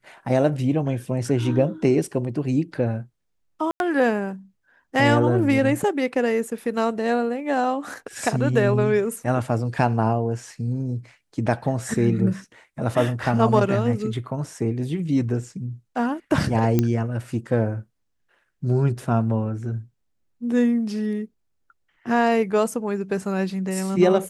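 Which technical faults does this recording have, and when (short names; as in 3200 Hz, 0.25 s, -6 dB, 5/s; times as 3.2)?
3.71–3.8 gap 91 ms
16.79 pop -7 dBFS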